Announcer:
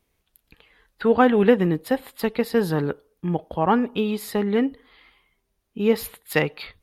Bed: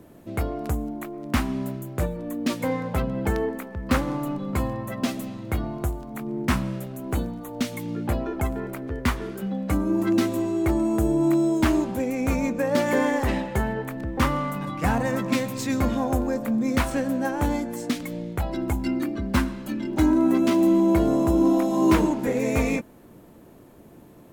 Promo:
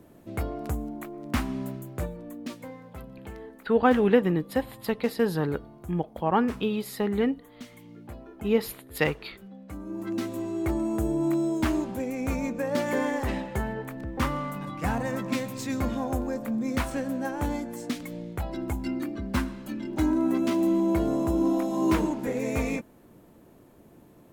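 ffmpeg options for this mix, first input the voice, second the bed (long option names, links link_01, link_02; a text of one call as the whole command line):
ffmpeg -i stem1.wav -i stem2.wav -filter_complex "[0:a]adelay=2650,volume=-4dB[link_01];[1:a]volume=8dB,afade=type=out:start_time=1.74:duration=0.99:silence=0.223872,afade=type=in:start_time=9.7:duration=0.97:silence=0.251189[link_02];[link_01][link_02]amix=inputs=2:normalize=0" out.wav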